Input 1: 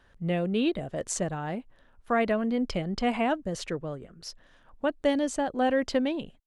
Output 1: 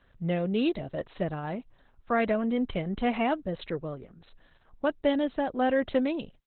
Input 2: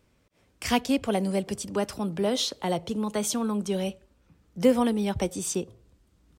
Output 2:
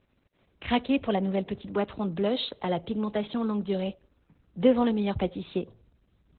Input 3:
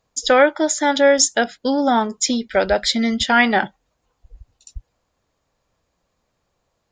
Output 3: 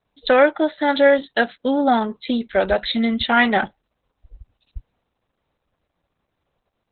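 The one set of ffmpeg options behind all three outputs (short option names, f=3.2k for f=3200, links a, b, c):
-ar 48000 -c:a libopus -b:a 8k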